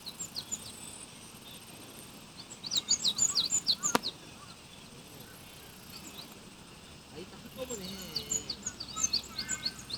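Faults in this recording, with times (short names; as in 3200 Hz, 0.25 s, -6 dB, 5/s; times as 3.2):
2.77 pop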